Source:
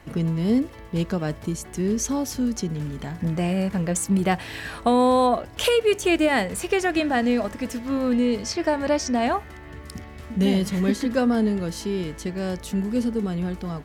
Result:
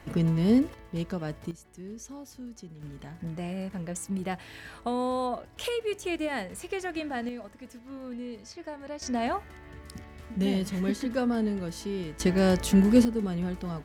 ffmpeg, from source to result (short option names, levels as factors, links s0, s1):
-af "asetnsamples=n=441:p=0,asendcmd='0.74 volume volume -7.5dB;1.51 volume volume -18dB;2.83 volume volume -11dB;7.29 volume volume -17dB;9.02 volume volume -6.5dB;12.2 volume volume 5dB;13.05 volume volume -4dB',volume=0.891"